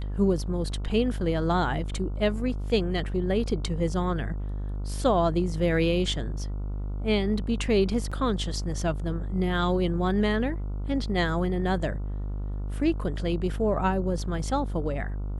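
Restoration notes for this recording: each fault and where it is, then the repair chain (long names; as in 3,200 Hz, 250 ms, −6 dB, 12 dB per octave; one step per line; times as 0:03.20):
mains buzz 50 Hz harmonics 29 −31 dBFS
0:08.11–0:08.12: drop-out 5.7 ms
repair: hum removal 50 Hz, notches 29
repair the gap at 0:08.11, 5.7 ms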